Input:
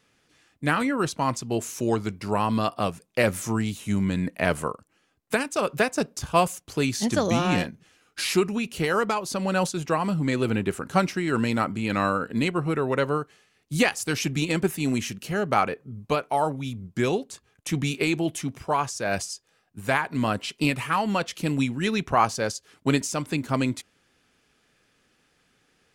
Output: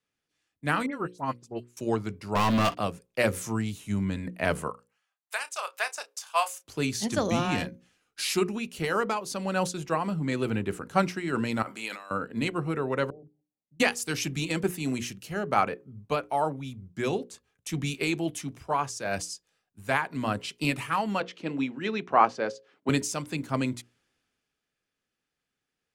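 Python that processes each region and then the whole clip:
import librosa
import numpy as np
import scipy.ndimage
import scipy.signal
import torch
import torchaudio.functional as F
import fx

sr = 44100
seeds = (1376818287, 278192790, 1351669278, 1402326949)

y = fx.chain(x, sr, fx.dispersion(late='highs', ms=73.0, hz=2300.0),
    fx.upward_expand(threshold_db=-35.0, expansion=2.5), at=(0.86, 1.77))
y = fx.chain(y, sr, fx.ladder_lowpass(hz=3900.0, resonance_pct=35),
    fx.leveller(passes=5), at=(2.35, 2.78))
y = fx.chain(y, sr, fx.highpass(hz=740.0, slope=24),
    fx.doubler(ms=31.0, db=-13.0), at=(4.7, 6.64))
y = fx.chain(y, sr, fx.highpass(hz=570.0, slope=12),
    fx.over_compress(threshold_db=-34.0, ratio=-1.0),
    fx.high_shelf(hz=9100.0, db=7.5), at=(11.62, 12.11))
y = fx.chain(y, sr, fx.cheby_ripple(hz=830.0, ripple_db=9),
    fx.hum_notches(base_hz=50, count=7),
    fx.level_steps(step_db=22), at=(13.1, 13.8))
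y = fx.chain(y, sr, fx.bandpass_edges(low_hz=300.0, high_hz=3600.0),
    fx.low_shelf(hz=450.0, db=6.0), at=(21.2, 22.89))
y = fx.hum_notches(y, sr, base_hz=60, count=9)
y = fx.band_widen(y, sr, depth_pct=40)
y = y * librosa.db_to_amplitude(-3.5)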